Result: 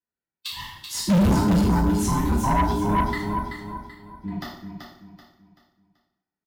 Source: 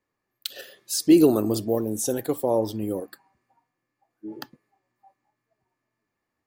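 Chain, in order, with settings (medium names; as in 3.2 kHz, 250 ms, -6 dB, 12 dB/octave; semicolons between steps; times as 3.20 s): every band turned upside down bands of 500 Hz; gate with hold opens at -41 dBFS; in parallel at -6.5 dB: integer overflow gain 7.5 dB; 2.91–4.35 s: on the sum: peaking EQ 2.4 kHz +15 dB 2.1 oct; on a send: feedback delay 383 ms, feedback 35%, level -7 dB; on the sum: two-slope reverb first 0.58 s, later 2 s, from -25 dB, DRR -7.5 dB; saturation -11 dBFS, distortion -6 dB; treble shelf 5.5 kHz -12 dB; trim -4 dB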